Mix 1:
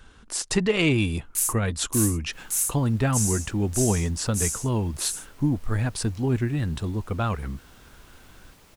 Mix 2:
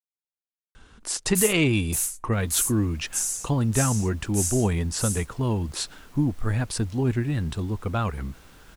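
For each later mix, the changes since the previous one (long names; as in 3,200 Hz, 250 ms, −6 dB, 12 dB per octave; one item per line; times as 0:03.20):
speech: entry +0.75 s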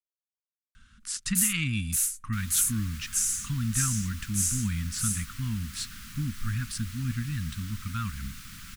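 speech −4.5 dB
second sound +11.5 dB
master: add elliptic band-stop filter 230–1,300 Hz, stop band 60 dB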